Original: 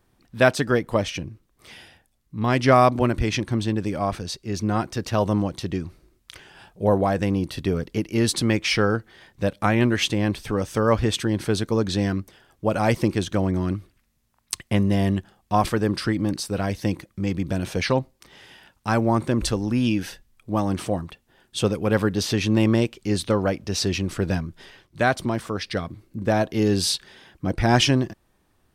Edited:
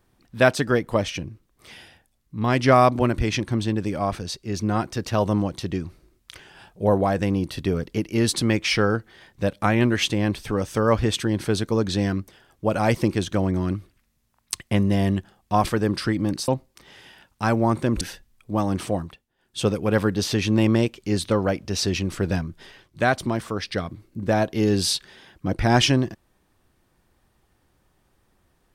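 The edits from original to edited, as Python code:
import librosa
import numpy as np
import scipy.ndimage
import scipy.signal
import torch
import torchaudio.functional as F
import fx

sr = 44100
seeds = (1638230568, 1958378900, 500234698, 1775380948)

y = fx.edit(x, sr, fx.cut(start_s=16.48, length_s=1.45),
    fx.cut(start_s=19.46, length_s=0.54),
    fx.fade_down_up(start_s=21.01, length_s=0.63, db=-16.0, fade_s=0.28), tone=tone)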